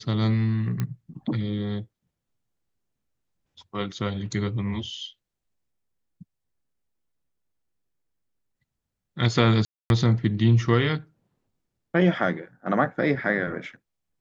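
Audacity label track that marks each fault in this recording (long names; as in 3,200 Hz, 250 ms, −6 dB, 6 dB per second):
0.800000	0.800000	click −15 dBFS
9.650000	9.900000	drop-out 251 ms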